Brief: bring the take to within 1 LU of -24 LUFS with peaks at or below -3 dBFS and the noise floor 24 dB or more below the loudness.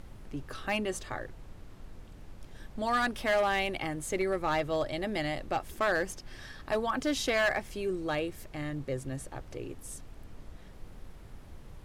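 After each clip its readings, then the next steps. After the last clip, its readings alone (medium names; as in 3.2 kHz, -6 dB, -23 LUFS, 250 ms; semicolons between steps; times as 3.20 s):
clipped samples 0.8%; clipping level -22.0 dBFS; noise floor -50 dBFS; noise floor target -56 dBFS; loudness -32.0 LUFS; peak level -22.0 dBFS; loudness target -24.0 LUFS
-> clip repair -22 dBFS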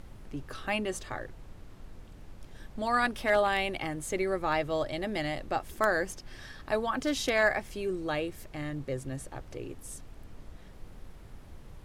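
clipped samples 0.0%; noise floor -50 dBFS; noise floor target -56 dBFS
-> noise print and reduce 6 dB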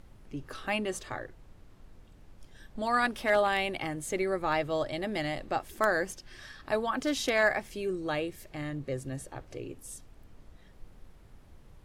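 noise floor -55 dBFS; loudness -31.0 LUFS; peak level -13.0 dBFS; loudness target -24.0 LUFS
-> trim +7 dB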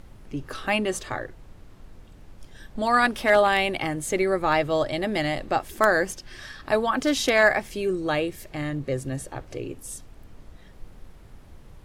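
loudness -24.0 LUFS; peak level -6.0 dBFS; noise floor -48 dBFS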